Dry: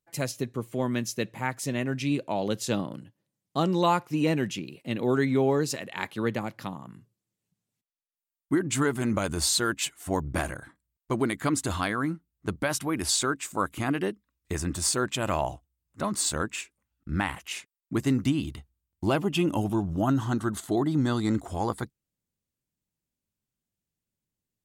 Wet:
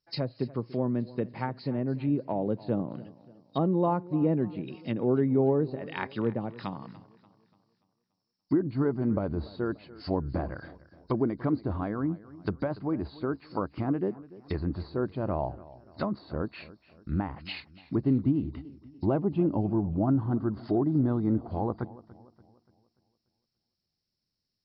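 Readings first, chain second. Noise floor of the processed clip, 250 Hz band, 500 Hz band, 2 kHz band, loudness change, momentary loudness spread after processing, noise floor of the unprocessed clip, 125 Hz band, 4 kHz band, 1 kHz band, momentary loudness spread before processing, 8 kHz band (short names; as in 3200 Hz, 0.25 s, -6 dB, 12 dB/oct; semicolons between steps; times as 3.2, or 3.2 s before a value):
-84 dBFS, 0.0 dB, -0.5 dB, -11.5 dB, -2.0 dB, 12 LU, under -85 dBFS, 0.0 dB, -14.0 dB, -5.5 dB, 11 LU, under -40 dB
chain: nonlinear frequency compression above 3700 Hz 4:1; treble ducked by the level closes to 700 Hz, closed at -25.5 dBFS; warbling echo 0.29 s, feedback 43%, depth 62 cents, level -19 dB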